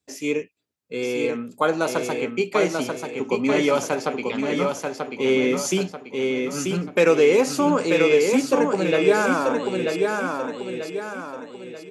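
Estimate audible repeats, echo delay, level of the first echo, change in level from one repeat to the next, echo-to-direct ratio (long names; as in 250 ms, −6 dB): 5, 937 ms, −4.0 dB, −7.5 dB, −3.0 dB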